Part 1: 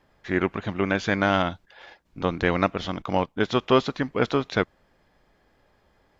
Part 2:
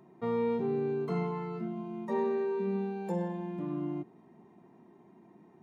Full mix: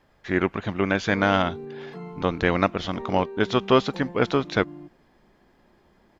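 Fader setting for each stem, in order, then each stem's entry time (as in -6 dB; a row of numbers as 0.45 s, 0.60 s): +1.0 dB, -6.0 dB; 0.00 s, 0.85 s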